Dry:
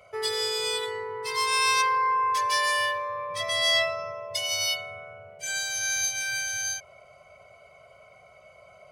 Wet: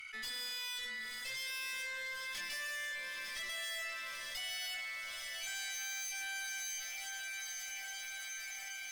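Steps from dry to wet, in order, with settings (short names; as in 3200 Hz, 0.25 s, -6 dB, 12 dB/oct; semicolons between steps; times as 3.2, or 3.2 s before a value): steep high-pass 1600 Hz 48 dB/oct; high shelf 3800 Hz -9 dB; tube stage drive 40 dB, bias 0.7; diffused feedback echo 0.913 s, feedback 63%, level -8.5 dB; fast leveller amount 70%; gain -1 dB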